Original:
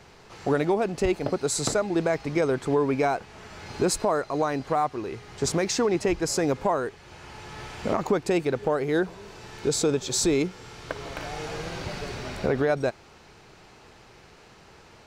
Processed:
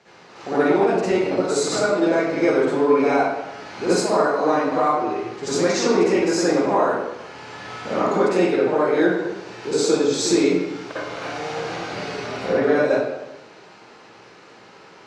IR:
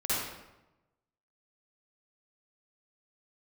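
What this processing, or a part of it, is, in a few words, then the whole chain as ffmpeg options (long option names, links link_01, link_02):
supermarket ceiling speaker: -filter_complex "[0:a]highpass=220,lowpass=6600[link_01];[1:a]atrim=start_sample=2205[link_02];[link_01][link_02]afir=irnorm=-1:irlink=0,volume=-2dB"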